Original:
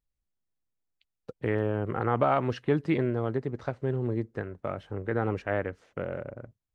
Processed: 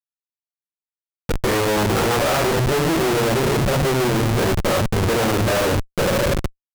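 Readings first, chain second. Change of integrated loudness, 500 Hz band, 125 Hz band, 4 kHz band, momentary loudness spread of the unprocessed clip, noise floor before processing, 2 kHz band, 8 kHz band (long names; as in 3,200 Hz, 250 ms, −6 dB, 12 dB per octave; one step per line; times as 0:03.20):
+11.0 dB, +10.5 dB, +10.5 dB, +25.0 dB, 11 LU, −85 dBFS, +14.0 dB, can't be measured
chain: dynamic equaliser 580 Hz, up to +4 dB, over −39 dBFS, Q 2.7
rectangular room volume 42 cubic metres, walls mixed, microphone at 1.2 metres
harmonic generator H 8 −16 dB, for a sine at −1.5 dBFS
comparator with hysteresis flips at −29.5 dBFS
level +2 dB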